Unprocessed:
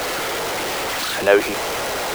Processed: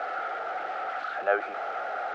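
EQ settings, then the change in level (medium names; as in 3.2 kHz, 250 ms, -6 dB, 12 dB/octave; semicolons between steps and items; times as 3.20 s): two resonant band-passes 1 kHz, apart 0.82 oct; distance through air 110 m; 0.0 dB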